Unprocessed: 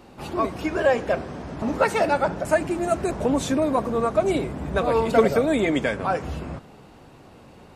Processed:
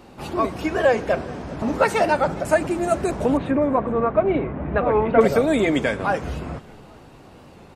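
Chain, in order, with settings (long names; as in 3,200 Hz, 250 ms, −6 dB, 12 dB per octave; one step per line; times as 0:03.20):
0:03.37–0:05.21: low-pass filter 2,400 Hz 24 dB per octave
echo with shifted repeats 411 ms, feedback 30%, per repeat −53 Hz, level −21 dB
wow of a warped record 45 rpm, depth 100 cents
level +2 dB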